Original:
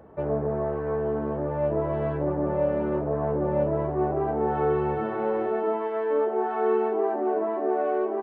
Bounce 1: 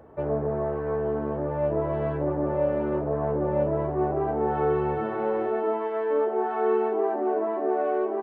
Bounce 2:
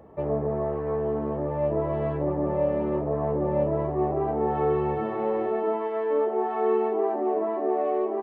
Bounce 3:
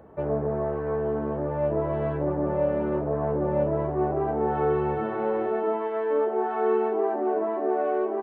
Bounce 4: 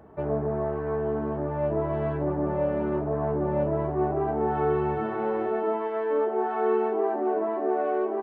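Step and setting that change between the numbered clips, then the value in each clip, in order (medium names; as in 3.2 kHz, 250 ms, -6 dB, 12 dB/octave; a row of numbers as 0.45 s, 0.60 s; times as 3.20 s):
band-stop, frequency: 190 Hz, 1.5 kHz, 5.2 kHz, 520 Hz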